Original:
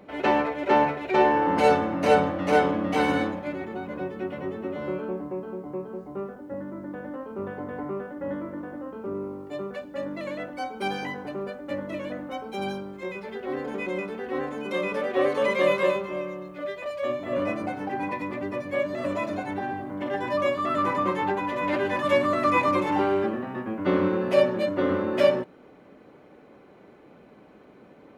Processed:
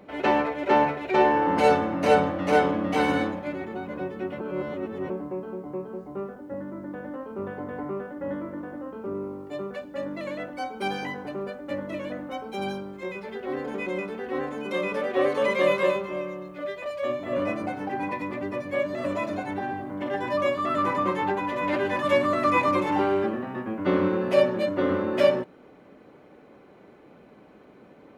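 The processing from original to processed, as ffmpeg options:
-filter_complex "[0:a]asplit=3[s0][s1][s2];[s0]atrim=end=4.402[s3];[s1]atrim=start=4.398:end=5.102,asetpts=PTS-STARTPTS,areverse[s4];[s2]atrim=start=5.098[s5];[s3][s4]acrossfade=d=0.004:c1=hsin:c2=hsin[s6];[s6][s5]acrossfade=d=0.004:c1=hsin:c2=hsin"

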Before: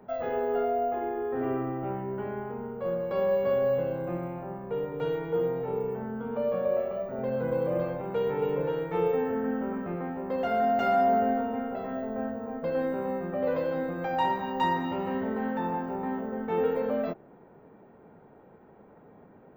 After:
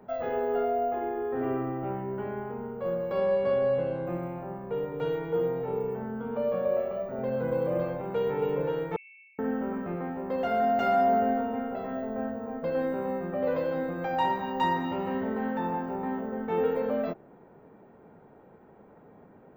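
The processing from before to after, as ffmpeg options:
-filter_complex "[0:a]asettb=1/sr,asplit=3[s0][s1][s2];[s0]atrim=end=3.174[s3];[s1]atrim=start=3.17:end=4.07,asetpts=PTS-STARTPTS,afade=t=in:d=0.004:c=qsin,afade=t=out:st=0.896:d=0.004:c=qsin,lowpass=f=8000:t=q:w=3[s4];[s2]atrim=start=4.066[s5];[s3][s4]acrossfade=d=0.004:c1=hsin:c2=qsin[s6];[s6][s5]acrossfade=d=0.004:c1=qsin:c2=hsin,asettb=1/sr,asplit=3[s7][s8][s9];[s7]atrim=end=8.964[s10];[s8]atrim=start=8.96:end=9.39,asetpts=PTS-STARTPTS,afade=t=in:d=0.004:c=qsin,afade=t=out:st=0.426:d=0.004:c=qsin,asuperpass=centerf=2400:order=20:qfactor=4.4[s11];[s9]atrim=start=9.386[s12];[s10][s11]acrossfade=d=0.004:c1=hsin:c2=qsin[s13];[s13][s12]acrossfade=d=0.004:c1=qsin:c2=hsin"

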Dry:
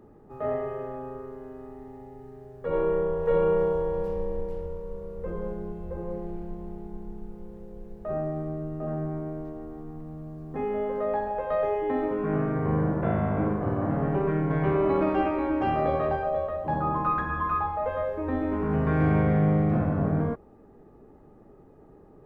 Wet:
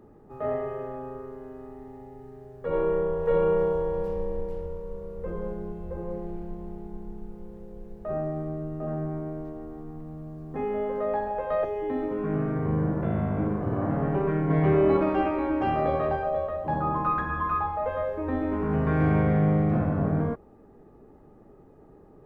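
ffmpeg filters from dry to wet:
-filter_complex "[0:a]asettb=1/sr,asplit=3[s0][s1][s2];[s0]atrim=end=11.644[s3];[s1]atrim=start=11.64:end=13.73,asetpts=PTS-STARTPTS,afade=t=in:d=0.004:c=qsin,afade=t=out:st=2.086:d=0.004:c=qsin,acrossover=split=430|3000[s4][s5][s6];[s5]acompressor=threshold=0.02:ratio=6:attack=3.2:release=140:knee=2.83:detection=peak[s7];[s4][s7][s6]amix=inputs=3:normalize=0[s8];[s2]atrim=start=13.726[s9];[s3][s8]acrossfade=d=0.004:c1=hsin:c2=qsin[s10];[s10][s9]acrossfade=d=0.004:c1=qsin:c2=hsin,asettb=1/sr,asplit=3[s11][s12][s13];[s11]atrim=end=14.464[s14];[s12]atrim=start=14.46:end=14.97,asetpts=PTS-STARTPTS,afade=t=in:d=0.004:c=qsin,afade=t=out:st=0.506:d=0.004:c=qsin,asplit=2[s15][s16];[s16]adelay=26,volume=0.668[s17];[s15][s17]amix=inputs=2:normalize=0,atrim=end_sample=22491[s18];[s13]atrim=start=14.966[s19];[s14][s18]acrossfade=d=0.004:c1=hsin:c2=qsin[s20];[s20][s19]acrossfade=d=0.004:c1=qsin:c2=hsin"

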